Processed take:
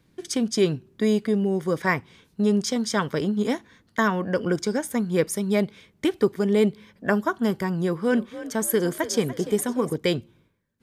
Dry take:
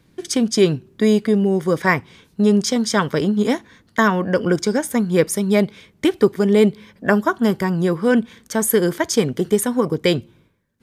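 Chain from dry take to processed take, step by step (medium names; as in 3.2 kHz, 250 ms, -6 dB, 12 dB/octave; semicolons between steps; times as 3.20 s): 7.82–9.96 s: frequency-shifting echo 291 ms, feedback 39%, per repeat +44 Hz, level -14 dB; trim -6 dB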